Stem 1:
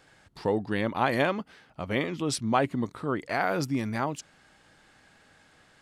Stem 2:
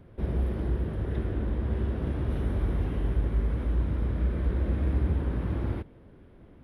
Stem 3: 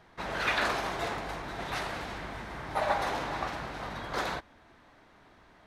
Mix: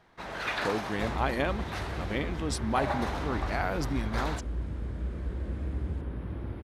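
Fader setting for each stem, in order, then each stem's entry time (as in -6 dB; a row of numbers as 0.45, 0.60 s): -4.5, -7.0, -3.5 dB; 0.20, 0.80, 0.00 s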